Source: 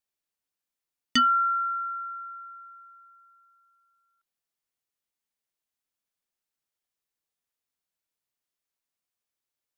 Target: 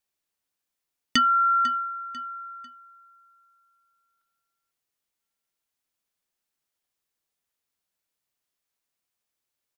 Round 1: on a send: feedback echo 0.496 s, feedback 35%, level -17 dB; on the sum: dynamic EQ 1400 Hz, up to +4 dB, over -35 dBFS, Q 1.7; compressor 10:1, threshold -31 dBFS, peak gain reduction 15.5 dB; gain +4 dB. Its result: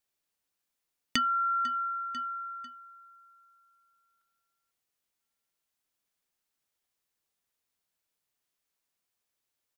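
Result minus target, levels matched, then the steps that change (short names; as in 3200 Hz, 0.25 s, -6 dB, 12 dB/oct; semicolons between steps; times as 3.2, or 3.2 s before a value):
compressor: peak gain reduction +7.5 dB
change: compressor 10:1, threshold -22.5 dBFS, peak gain reduction 8 dB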